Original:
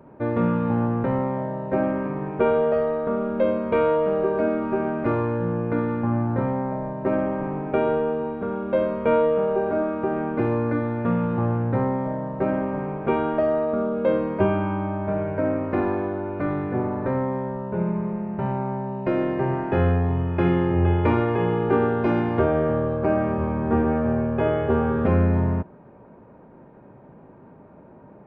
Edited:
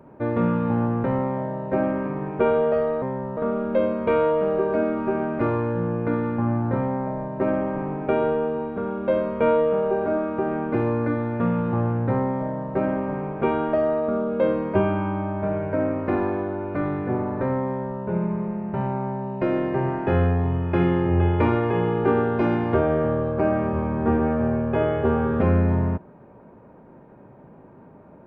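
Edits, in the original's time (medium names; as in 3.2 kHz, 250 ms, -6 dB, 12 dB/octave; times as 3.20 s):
17.33–17.68 s: copy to 3.02 s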